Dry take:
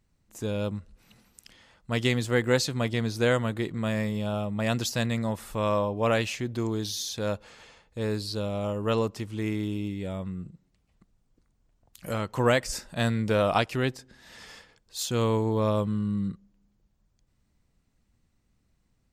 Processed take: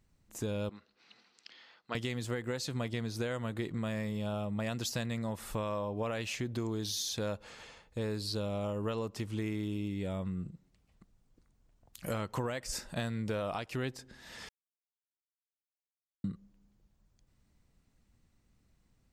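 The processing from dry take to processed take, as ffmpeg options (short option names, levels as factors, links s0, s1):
-filter_complex "[0:a]asettb=1/sr,asplit=3[s0][s1][s2];[s0]atrim=end=0.694[s3];[s1]atrim=start=0.69:end=1.95,asetpts=PTS-STARTPTS,afade=t=in:d=0.004:c=qsin,afade=t=out:st=1.256:d=0.004:c=qsin,highpass=430,equalizer=f=570:t=q:w=4:g=-7,equalizer=f=920:t=q:w=4:g=-3,equalizer=f=4300:t=q:w=4:g=5,lowpass=f=5100:w=0.5412,lowpass=f=5100:w=1.3066[s4];[s2]atrim=start=1.946[s5];[s3][s4]acrossfade=d=0.004:c1=hsin:c2=qsin[s6];[s6][s5]acrossfade=d=0.004:c1=qsin:c2=hsin,asplit=3[s7][s8][s9];[s7]atrim=end=14.49,asetpts=PTS-STARTPTS,afade=t=out:st=14.486:d=0.004:c=hsin[s10];[s8]atrim=start=14.49:end=16.24,asetpts=PTS-STARTPTS,volume=0[s11];[s9]atrim=start=16.24,asetpts=PTS-STARTPTS,afade=t=in:d=0.004:c=hsin[s12];[s10][s11][s12]concat=n=3:v=0:a=1,alimiter=limit=0.141:level=0:latency=1:release=345,acompressor=threshold=0.0251:ratio=6"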